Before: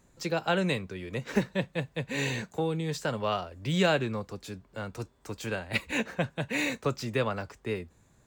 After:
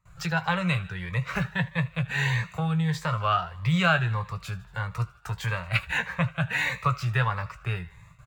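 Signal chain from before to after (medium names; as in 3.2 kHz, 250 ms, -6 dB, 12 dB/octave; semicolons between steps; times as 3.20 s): gate with hold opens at -53 dBFS; FFT filter 160 Hz 0 dB, 250 Hz -29 dB, 1.2 kHz +5 dB, 6 kHz -13 dB, 15 kHz -10 dB; in parallel at +2 dB: compression, threshold -46 dBFS, peak gain reduction 20.5 dB; on the sum: doubling 17 ms -10.5 dB; on a send: thinning echo 77 ms, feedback 65%, high-pass 570 Hz, level -19 dB; on the sum: Shepard-style phaser rising 1.6 Hz; trim +7 dB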